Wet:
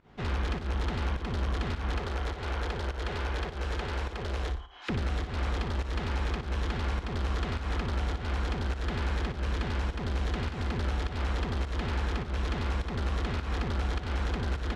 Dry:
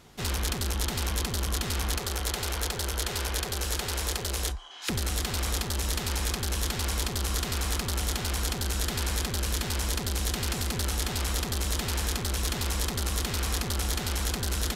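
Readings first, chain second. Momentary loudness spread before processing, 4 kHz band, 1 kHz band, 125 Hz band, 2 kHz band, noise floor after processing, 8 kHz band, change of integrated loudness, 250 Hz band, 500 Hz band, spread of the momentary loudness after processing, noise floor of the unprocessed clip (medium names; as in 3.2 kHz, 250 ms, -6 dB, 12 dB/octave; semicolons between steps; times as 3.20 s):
1 LU, -10.0 dB, -0.5 dB, 0.0 dB, -2.5 dB, -40 dBFS, -22.0 dB, -3.0 dB, 0.0 dB, -0.5 dB, 3 LU, -35 dBFS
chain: low-pass 2.2 kHz 12 dB/octave; volume shaper 103 bpm, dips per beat 1, -18 dB, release 159 ms; flutter echo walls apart 10.2 m, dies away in 0.35 s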